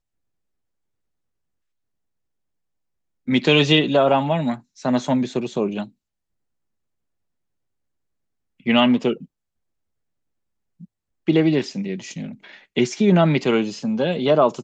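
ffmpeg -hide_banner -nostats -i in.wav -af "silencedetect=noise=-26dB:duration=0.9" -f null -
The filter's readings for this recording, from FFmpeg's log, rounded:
silence_start: 0.00
silence_end: 3.28 | silence_duration: 3.28
silence_start: 5.84
silence_end: 8.66 | silence_duration: 2.82
silence_start: 9.13
silence_end: 11.28 | silence_duration: 2.15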